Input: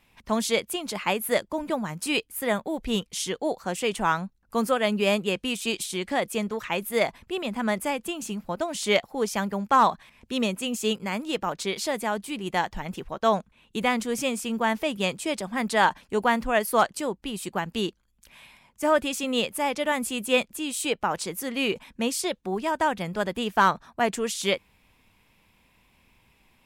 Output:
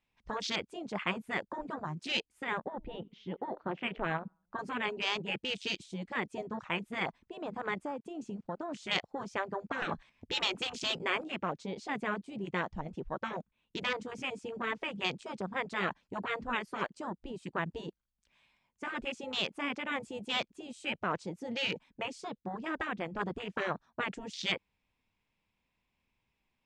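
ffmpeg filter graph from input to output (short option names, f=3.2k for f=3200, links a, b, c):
-filter_complex "[0:a]asettb=1/sr,asplit=3[a][b][c];[a]atrim=end=2.594[d];[b]atrim=start=2.59:end=4.59,asetpts=PTS-STARTPTS,afade=t=in:d=0.004:c=qsin,afade=t=out:st=1.996:d=0.004:c=qsin,lowpass=f=3.3k:w=0.5412,lowpass=f=3.3k:w=1.3066,asplit=2[e][f];[f]adelay=88,lowpass=f=1.5k:p=1,volume=-23.5dB,asplit=2[g][h];[h]adelay=88,lowpass=f=1.5k:p=1,volume=0.52,asplit=2[i][j];[j]adelay=88,lowpass=f=1.5k:p=1,volume=0.52[k];[e][g][i][k]amix=inputs=4:normalize=0,atrim=end_sample=88200[l];[c]atrim=start=4.586[m];[d][l]acrossfade=d=0.004:c1=hsin:c2=qsin[n];[n][m]acrossfade=d=0.004:c1=qsin:c2=hsin,asettb=1/sr,asplit=3[o][p][q];[o]atrim=end=7.744[r];[p]atrim=start=7.74:end=8.72,asetpts=PTS-STARTPTS,afade=t=in:d=0.004:c=qsin,afade=t=out:st=0.976:d=0.004:c=qsin,aeval=exprs='sgn(val(0))*max(abs(val(0))-0.00133,0)':c=same,acompressor=threshold=-32dB:ratio=2.5:attack=3.2:release=140:knee=1:detection=peak[s];[q]atrim=start=8.716[t];[r][s]acrossfade=d=0.004:c1=hsin:c2=qsin[u];[u][t]acrossfade=d=0.004:c1=qsin:c2=hsin,asettb=1/sr,asplit=3[v][w][x];[v]atrim=end=9.824[y];[w]atrim=start=9.82:end=11.24,asetpts=PTS-STARTPTS,afade=t=in:d=0.004:c=qsin,afade=t=out:st=1.416:d=0.004:c=qsin,agate=range=-33dB:threshold=-55dB:ratio=3:release=100:detection=peak,acontrast=72,asplit=2[z][aa];[aa]adelay=12,volume=-12dB[ab];[z][ab]amix=inputs=2:normalize=0,atrim=end_sample=62622[ac];[x]atrim=start=11.236[ad];[y][ac]acrossfade=d=0.004:c1=hsin:c2=qsin[ae];[ae][ad]acrossfade=d=0.004:c1=qsin:c2=hsin,lowpass=f=7.2k:w=0.5412,lowpass=f=7.2k:w=1.3066,afwtdn=0.0224,afftfilt=real='re*lt(hypot(re,im),0.251)':imag='im*lt(hypot(re,im),0.251)':win_size=1024:overlap=0.75,volume=-2.5dB"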